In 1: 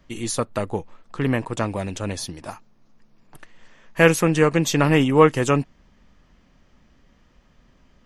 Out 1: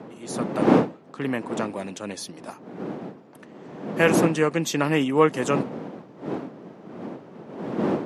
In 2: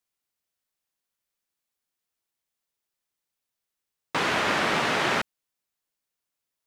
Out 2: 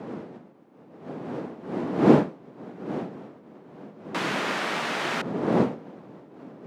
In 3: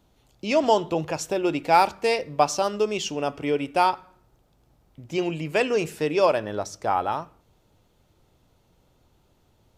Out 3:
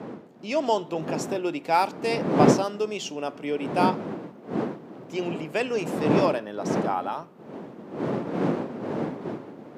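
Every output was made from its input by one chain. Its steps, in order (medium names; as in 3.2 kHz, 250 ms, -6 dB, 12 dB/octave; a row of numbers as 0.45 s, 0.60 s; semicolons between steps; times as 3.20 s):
fade-in on the opening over 0.59 s; wind noise 380 Hz -23 dBFS; high-pass 160 Hz 24 dB/octave; trim -4 dB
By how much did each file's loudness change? -3.5 LU, -1.5 LU, -2.5 LU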